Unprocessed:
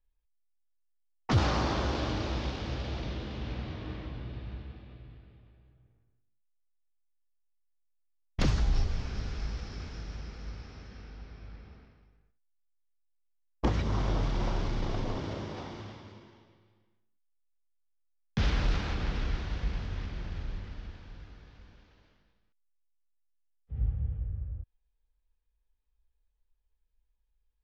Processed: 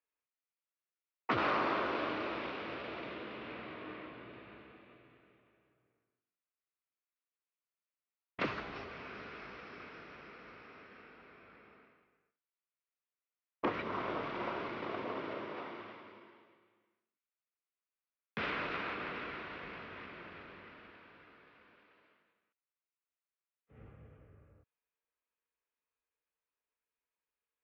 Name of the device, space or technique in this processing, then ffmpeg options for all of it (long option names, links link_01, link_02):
phone earpiece: -af "highpass=440,equalizer=frequency=540:width_type=q:width=4:gain=-3,equalizer=frequency=810:width_type=q:width=4:gain=-9,equalizer=frequency=1700:width_type=q:width=4:gain=-5,equalizer=frequency=2600:width_type=q:width=4:gain=5,lowpass=frequency=3900:width=0.5412,lowpass=frequency=3900:width=1.3066,highshelf=frequency=2400:width_type=q:width=1.5:gain=-7.5,volume=3dB"